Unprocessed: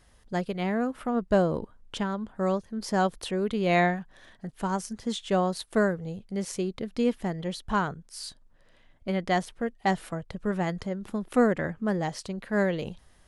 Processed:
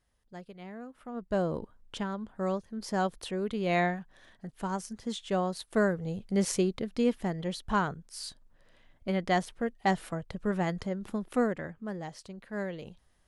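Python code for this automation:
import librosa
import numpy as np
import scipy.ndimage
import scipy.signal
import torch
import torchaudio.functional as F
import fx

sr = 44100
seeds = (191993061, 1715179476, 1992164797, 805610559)

y = fx.gain(x, sr, db=fx.line((0.94, -16.0), (1.48, -4.5), (5.61, -4.5), (6.47, 5.0), (6.9, -1.5), (11.11, -1.5), (11.75, -10.0)))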